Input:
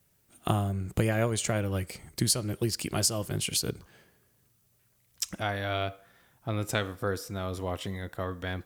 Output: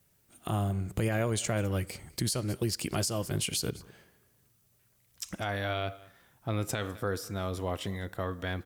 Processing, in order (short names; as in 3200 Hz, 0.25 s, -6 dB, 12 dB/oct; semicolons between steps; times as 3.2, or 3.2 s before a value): echo 0.203 s -24 dB; limiter -20.5 dBFS, peak gain reduction 9.5 dB